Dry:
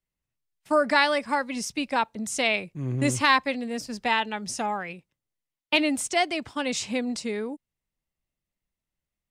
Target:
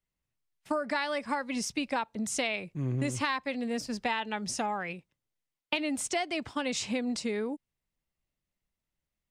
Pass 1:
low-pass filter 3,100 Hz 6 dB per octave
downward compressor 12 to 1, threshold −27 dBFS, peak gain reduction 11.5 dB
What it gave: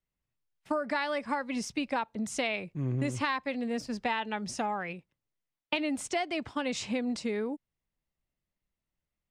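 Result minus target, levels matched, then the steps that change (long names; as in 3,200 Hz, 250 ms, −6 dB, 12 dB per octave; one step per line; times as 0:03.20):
8,000 Hz band −4.5 dB
change: low-pass filter 8,200 Hz 6 dB per octave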